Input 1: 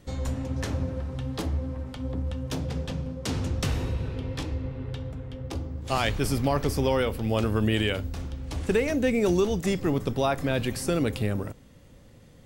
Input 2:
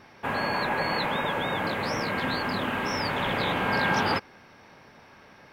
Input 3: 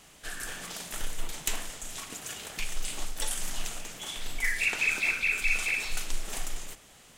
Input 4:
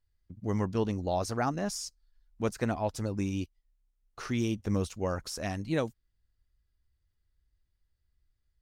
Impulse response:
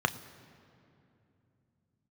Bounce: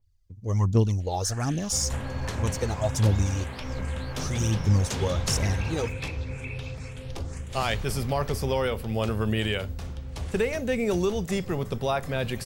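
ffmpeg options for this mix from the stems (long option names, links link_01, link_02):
-filter_complex "[0:a]equalizer=frequency=290:width=6:gain=-13,adelay=1650,volume=-1dB[link_01];[1:a]acompressor=threshold=-32dB:ratio=6,adelay=1700,volume=-7dB[link_02];[2:a]lowpass=6800,acompressor=threshold=-33dB:ratio=6,asplit=2[link_03][link_04];[link_04]afreqshift=2[link_05];[link_03][link_05]amix=inputs=2:normalize=1,adelay=1000,volume=-3dB[link_06];[3:a]equalizer=frequency=100:width_type=o:width=0.67:gain=9,equalizer=frequency=1600:width_type=o:width=0.67:gain=-7,equalizer=frequency=6300:width_type=o:width=0.67:gain=8,aphaser=in_gain=1:out_gain=1:delay=2.6:decay=0.64:speed=1.3:type=triangular,adynamicequalizer=threshold=0.00501:dfrequency=5800:dqfactor=0.7:tfrequency=5800:tqfactor=0.7:attack=5:release=100:ratio=0.375:range=3.5:mode=boostabove:tftype=highshelf,volume=-1dB[link_07];[link_01][link_02][link_06][link_07]amix=inputs=4:normalize=0"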